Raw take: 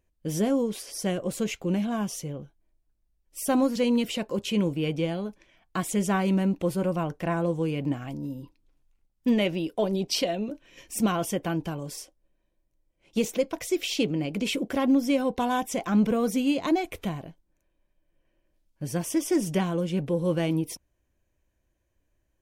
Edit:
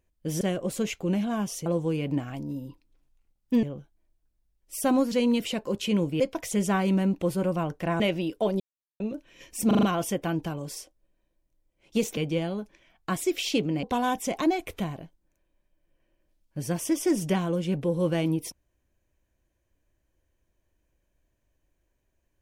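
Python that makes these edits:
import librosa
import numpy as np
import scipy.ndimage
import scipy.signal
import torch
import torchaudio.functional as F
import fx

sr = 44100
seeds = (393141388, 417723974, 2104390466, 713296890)

y = fx.edit(x, sr, fx.cut(start_s=0.41, length_s=0.61),
    fx.swap(start_s=4.84, length_s=1.07, other_s=13.38, other_length_s=0.31),
    fx.move(start_s=7.4, length_s=1.97, to_s=2.27),
    fx.silence(start_s=9.97, length_s=0.4),
    fx.stutter(start_s=11.04, slice_s=0.04, count=5),
    fx.cut(start_s=14.28, length_s=1.02),
    fx.cut(start_s=15.87, length_s=0.78), tone=tone)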